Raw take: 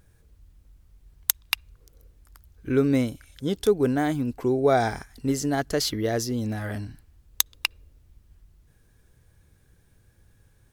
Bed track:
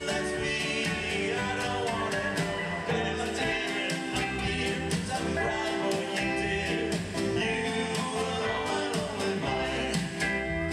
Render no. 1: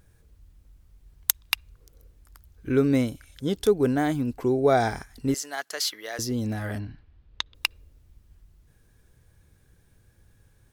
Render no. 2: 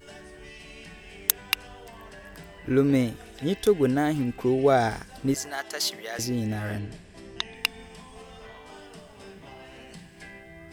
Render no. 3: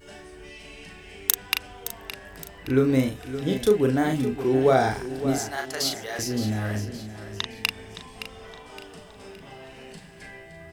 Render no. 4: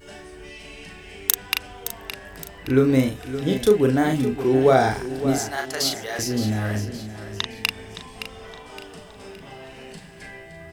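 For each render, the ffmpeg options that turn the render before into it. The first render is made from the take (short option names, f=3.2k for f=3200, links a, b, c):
-filter_complex "[0:a]asettb=1/sr,asplit=3[a][b][c];[a]atrim=end=5.344[d];[b]atrim=start=5.34:end=6.19,asetpts=PTS-STARTPTS,afade=t=in:d=0.004:c=qsin,afade=t=out:st=0.846:d=0.004:c=qsin,highpass=990[e];[c]atrim=start=6.186[f];[d][e]acrossfade=d=0.004:c1=hsin:c2=qsin[g];[g][f]acrossfade=d=0.004:c1=qsin:c2=hsin,asplit=3[h][i][j];[h]afade=t=out:st=6.78:d=0.02[k];[i]lowpass=f=3.9k:w=0.5412,lowpass=f=3.9k:w=1.3066,afade=t=in:st=6.78:d=0.02,afade=t=out:st=7.54:d=0.02[l];[j]afade=t=in:st=7.54:d=0.02[m];[k][l][m]amix=inputs=3:normalize=0"
-filter_complex "[1:a]volume=-16dB[a];[0:a][a]amix=inputs=2:normalize=0"
-filter_complex "[0:a]asplit=2[a][b];[b]adelay=38,volume=-5dB[c];[a][c]amix=inputs=2:normalize=0,aecho=1:1:567|1134|1701|2268:0.251|0.1|0.0402|0.0161"
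-af "volume=3dB,alimiter=limit=-1dB:level=0:latency=1"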